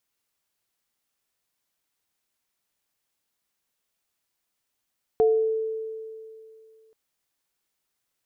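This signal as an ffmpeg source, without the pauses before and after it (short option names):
-f lavfi -i "aevalsrc='0.178*pow(10,-3*t/2.52)*sin(2*PI*442*t)+0.0596*pow(10,-3*t/0.46)*sin(2*PI*717*t)':d=1.73:s=44100"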